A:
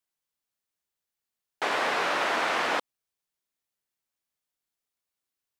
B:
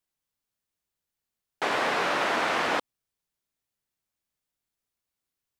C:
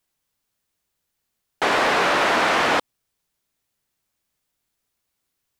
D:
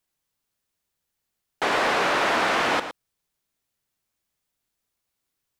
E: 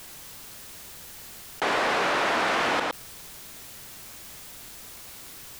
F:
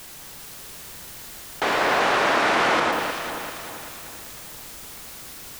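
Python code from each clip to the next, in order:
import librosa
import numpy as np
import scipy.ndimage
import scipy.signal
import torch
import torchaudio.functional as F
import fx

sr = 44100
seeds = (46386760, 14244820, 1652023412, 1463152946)

y1 = fx.low_shelf(x, sr, hz=240.0, db=8.5)
y2 = 10.0 ** (-21.0 / 20.0) * np.tanh(y1 / 10.0 ** (-21.0 / 20.0))
y2 = F.gain(torch.from_numpy(y2), 9.0).numpy()
y3 = y2 + 10.0 ** (-11.0 / 20.0) * np.pad(y2, (int(113 * sr / 1000.0), 0))[:len(y2)]
y3 = F.gain(torch.from_numpy(y3), -3.5).numpy()
y4 = fx.env_flatten(y3, sr, amount_pct=70)
y4 = F.gain(torch.from_numpy(y4), -3.0).numpy()
y5 = fx.echo_alternate(y4, sr, ms=195, hz=2000.0, feedback_pct=67, wet_db=-2.5)
y5 = F.gain(torch.from_numpy(y5), 2.5).numpy()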